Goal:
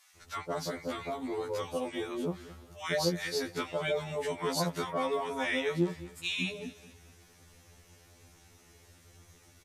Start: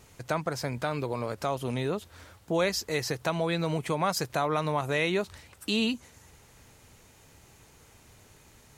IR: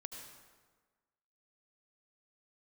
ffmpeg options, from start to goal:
-filter_complex "[0:a]acrossover=split=1100[link_01][link_02];[link_01]adelay=150[link_03];[link_03][link_02]amix=inputs=2:normalize=0,asetrate=40131,aresample=44100,asplit=2[link_04][link_05];[link_05]aecho=0:1:215|430|645:0.133|0.0453|0.0154[link_06];[link_04][link_06]amix=inputs=2:normalize=0,afftfilt=real='re*2*eq(mod(b,4),0)':imag='im*2*eq(mod(b,4),0)':win_size=2048:overlap=0.75"

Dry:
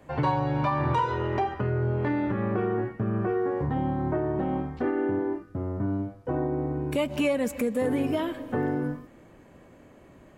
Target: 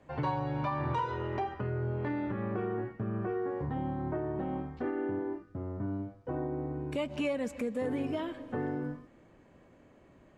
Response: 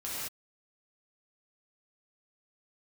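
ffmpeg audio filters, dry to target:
-af "lowpass=7200,volume=-7dB"

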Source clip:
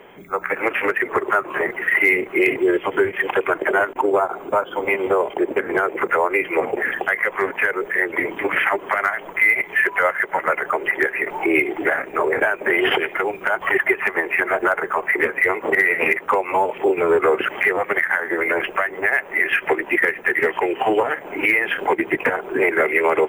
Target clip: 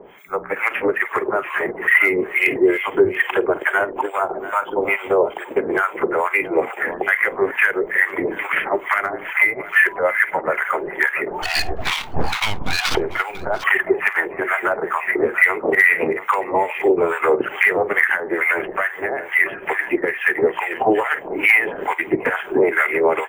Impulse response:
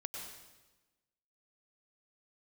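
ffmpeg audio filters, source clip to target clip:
-filter_complex "[0:a]asettb=1/sr,asplit=3[link_01][link_02][link_03];[link_01]atrim=end=11.424[link_04];[link_02]atrim=start=11.42:end=12.95,asetpts=PTS-STARTPTS,afade=type=in:duration=0.004:curve=qsin,afade=type=out:start_time=1.526:duration=0.004:curve=qsin,aeval=exprs='abs(val(0))':channel_layout=same[link_05];[link_03]atrim=start=12.946[link_06];[link_04][link_05]acrossfade=duration=0.004:curve1=hsin:curve2=qsin[link_07];[link_07][link_06]acrossfade=duration=0.004:curve1=qsin:curve2=hsin,aecho=1:1:50|687:0.133|0.224,acrossover=split=920[link_08][link_09];[link_08]aeval=exprs='val(0)*(1-1/2+1/2*cos(2*PI*2.3*n/s))':channel_layout=same[link_10];[link_09]aeval=exprs='val(0)*(1-1/2-1/2*cos(2*PI*2.3*n/s))':channel_layout=same[link_11];[link_10][link_11]amix=inputs=2:normalize=0,volume=5dB"

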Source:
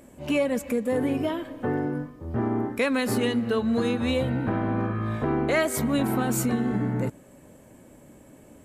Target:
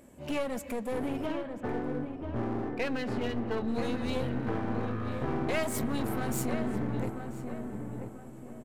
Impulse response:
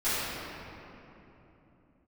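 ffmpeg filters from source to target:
-filter_complex "[0:a]asettb=1/sr,asplit=3[link_01][link_02][link_03];[link_01]atrim=end=1.264[link_04];[link_02]atrim=start=1.26:end=3.68,asetpts=PTS-STARTPTS,afade=type=in:duration=0.004:curve=qsin,afade=type=out:start_time=2.416:duration=0.004:curve=qsin,lowpass=3100[link_05];[link_03]atrim=start=3.676[link_06];[link_04][link_05]acrossfade=duration=0.004:curve1=hsin:curve2=qsin[link_07];[link_07][link_06]acrossfade=duration=0.004:curve1=qsin:curve2=hsin,aeval=exprs='clip(val(0),-1,0.0282)':channel_layout=same,asplit=2[link_08][link_09];[link_09]adelay=988,lowpass=frequency=1400:poles=1,volume=-6dB,asplit=2[link_10][link_11];[link_11]adelay=988,lowpass=frequency=1400:poles=1,volume=0.41,asplit=2[link_12][link_13];[link_13]adelay=988,lowpass=frequency=1400:poles=1,volume=0.41,asplit=2[link_14][link_15];[link_15]adelay=988,lowpass=frequency=1400:poles=1,volume=0.41,asplit=2[link_16][link_17];[link_17]adelay=988,lowpass=frequency=1400:poles=1,volume=0.41[link_18];[link_08][link_10][link_12][link_14][link_16][link_18]amix=inputs=6:normalize=0,volume=-5dB"

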